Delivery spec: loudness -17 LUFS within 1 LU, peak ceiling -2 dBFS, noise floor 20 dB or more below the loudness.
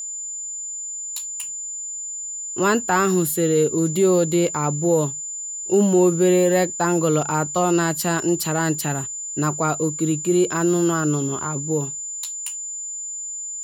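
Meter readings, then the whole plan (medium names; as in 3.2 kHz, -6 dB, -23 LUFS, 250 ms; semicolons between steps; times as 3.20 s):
steady tone 7.1 kHz; tone level -28 dBFS; loudness -21.5 LUFS; peak level -7.0 dBFS; loudness target -17.0 LUFS
-> band-stop 7.1 kHz, Q 30; trim +4.5 dB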